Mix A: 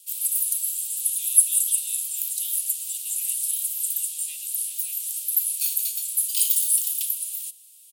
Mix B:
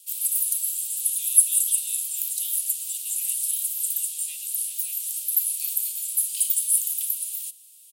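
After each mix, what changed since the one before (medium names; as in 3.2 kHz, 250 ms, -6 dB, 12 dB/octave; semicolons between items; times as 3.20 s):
second sound: add tilt EQ -4 dB/octave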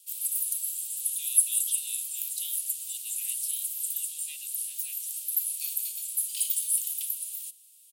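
first sound -5.5 dB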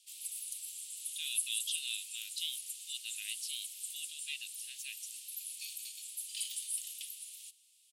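speech +7.0 dB; master: add distance through air 73 m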